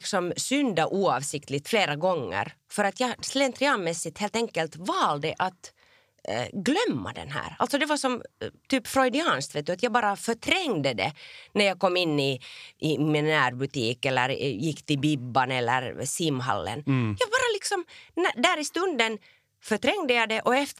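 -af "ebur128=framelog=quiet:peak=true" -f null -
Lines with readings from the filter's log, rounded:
Integrated loudness:
  I:         -26.3 LUFS
  Threshold: -36.5 LUFS
Loudness range:
  LRA:         3.1 LU
  Threshold: -46.7 LUFS
  LRA low:   -28.7 LUFS
  LRA high:  -25.6 LUFS
True peak:
  Peak:       -6.7 dBFS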